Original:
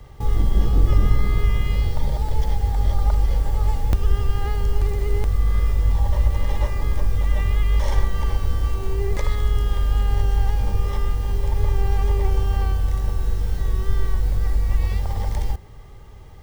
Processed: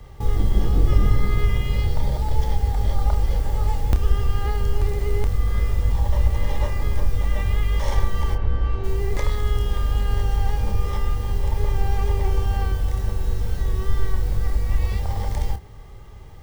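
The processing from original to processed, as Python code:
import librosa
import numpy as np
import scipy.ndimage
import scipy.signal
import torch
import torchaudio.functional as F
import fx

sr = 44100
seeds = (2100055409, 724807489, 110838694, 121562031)

y = fx.lowpass(x, sr, hz=fx.line((8.34, 2000.0), (8.83, 3300.0)), slope=12, at=(8.34, 8.83), fade=0.02)
y = fx.doubler(y, sr, ms=29.0, db=-8.5)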